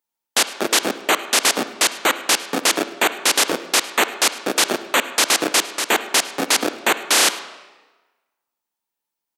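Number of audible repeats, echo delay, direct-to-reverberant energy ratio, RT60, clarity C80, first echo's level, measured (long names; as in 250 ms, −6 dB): 1, 104 ms, 11.5 dB, 1.2 s, 13.5 dB, −21.5 dB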